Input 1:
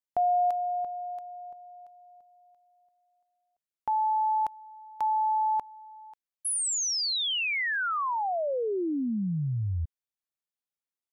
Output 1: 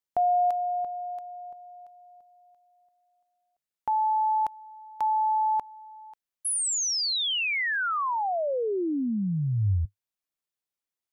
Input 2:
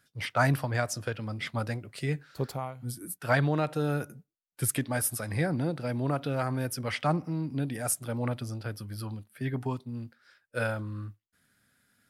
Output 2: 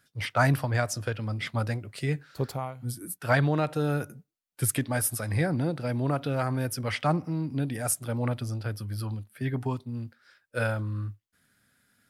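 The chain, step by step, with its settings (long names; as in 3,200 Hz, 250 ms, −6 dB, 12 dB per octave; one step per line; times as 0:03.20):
dynamic equaliser 100 Hz, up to +5 dB, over −48 dBFS, Q 3.5
level +1.5 dB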